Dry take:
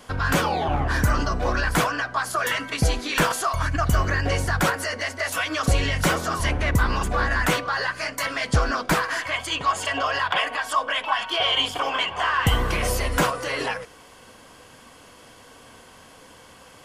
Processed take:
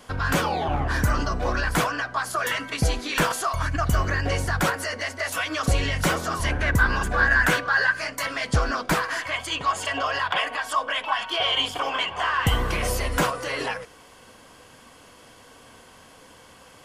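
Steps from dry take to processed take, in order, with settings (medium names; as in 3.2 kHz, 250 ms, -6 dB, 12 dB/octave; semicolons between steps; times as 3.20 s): 6.50–8.00 s: peaking EQ 1.6 kHz +12.5 dB 0.21 oct; trim -1.5 dB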